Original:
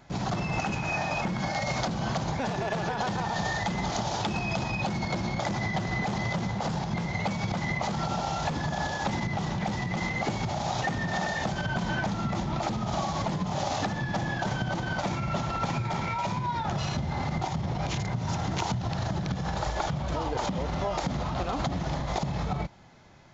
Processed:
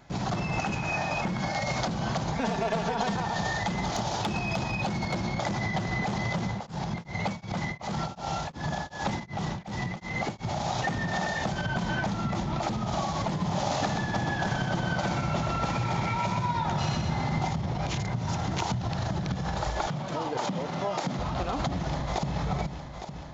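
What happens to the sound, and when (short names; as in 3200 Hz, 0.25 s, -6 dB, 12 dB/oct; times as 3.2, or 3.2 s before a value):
2.35–3.15 comb 4.4 ms
3.72–5.23 hard clip -21.5 dBFS
6.49–10.45 beating tremolo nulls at 2.7 Hz
13.28–17.54 feedback echo 0.126 s, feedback 46%, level -5 dB
19.87–21.19 HPF 130 Hz 24 dB/oct
21.86–22.35 echo throw 0.43 s, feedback 80%, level -8 dB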